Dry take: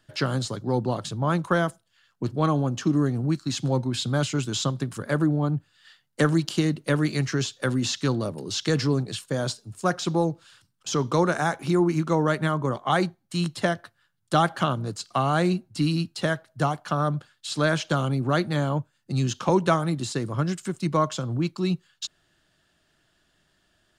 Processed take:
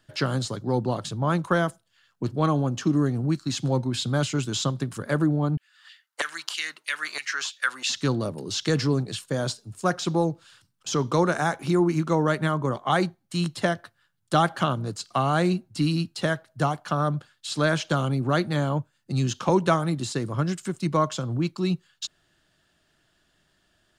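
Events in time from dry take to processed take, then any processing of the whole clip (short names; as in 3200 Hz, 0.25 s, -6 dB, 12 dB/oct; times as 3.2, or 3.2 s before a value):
5.57–7.9 LFO high-pass saw down 3.1 Hz 860–2600 Hz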